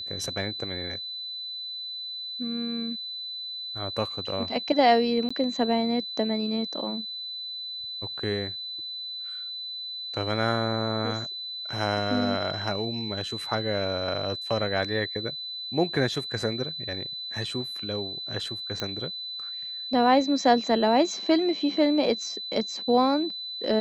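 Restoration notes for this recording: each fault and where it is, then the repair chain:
whine 4 kHz -33 dBFS
5.29–5.30 s: dropout 15 ms
18.80 s: pop -15 dBFS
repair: de-click; band-stop 4 kHz, Q 30; interpolate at 5.29 s, 15 ms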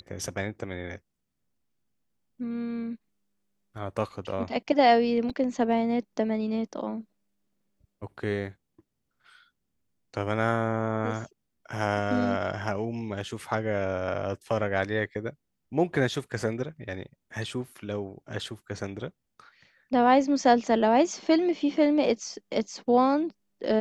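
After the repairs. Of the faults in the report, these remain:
nothing left

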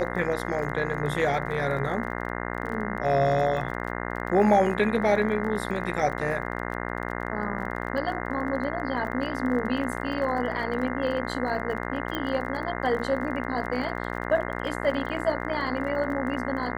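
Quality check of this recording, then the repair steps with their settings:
buzz 60 Hz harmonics 35 -32 dBFS
crackle 28 per s -35 dBFS
12.15 s: pop -16 dBFS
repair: de-click; de-hum 60 Hz, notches 35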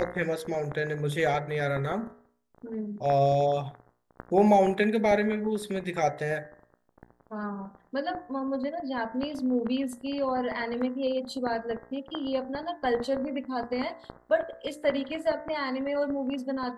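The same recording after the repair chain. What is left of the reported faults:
nothing left

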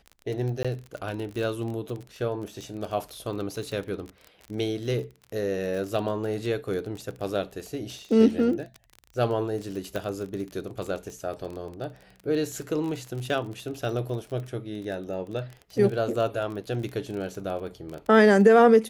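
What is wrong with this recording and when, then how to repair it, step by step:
crackle 26 per s -32 dBFS
0.63–0.65 s: dropout 16 ms
9.96 s: pop -17 dBFS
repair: de-click; interpolate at 0.63 s, 16 ms

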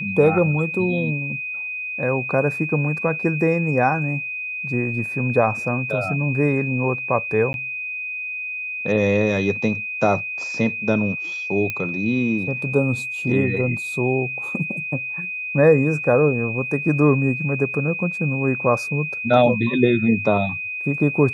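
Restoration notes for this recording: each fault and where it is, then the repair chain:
whine 2.5 kHz -26 dBFS
7.53–7.54 s: dropout 11 ms
11.70 s: pop -11 dBFS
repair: de-click; band-stop 2.5 kHz, Q 30; interpolate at 7.53 s, 11 ms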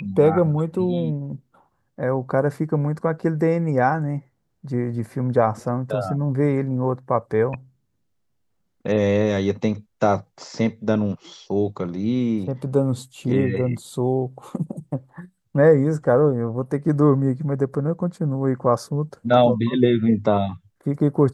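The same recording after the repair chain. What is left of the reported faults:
nothing left

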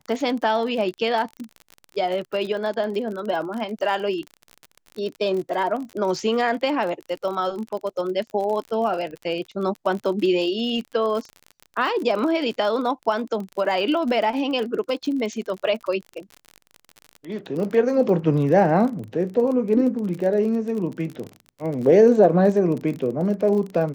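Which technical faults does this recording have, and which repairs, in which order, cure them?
crackle 39 per s -29 dBFS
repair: de-click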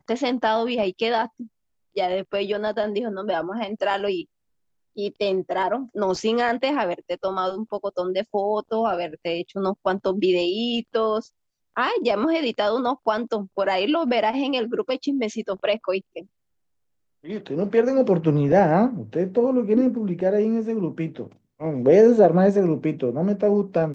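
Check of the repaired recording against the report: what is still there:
nothing left

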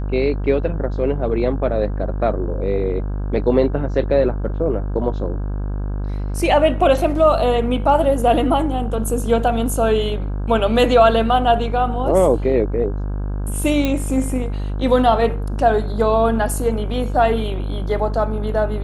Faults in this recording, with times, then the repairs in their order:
buzz 50 Hz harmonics 33 -23 dBFS
13.85 s: pop -7 dBFS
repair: de-click; de-hum 50 Hz, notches 33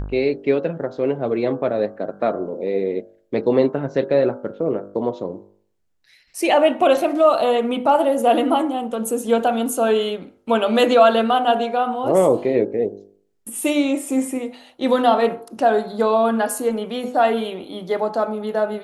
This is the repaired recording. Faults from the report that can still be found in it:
nothing left

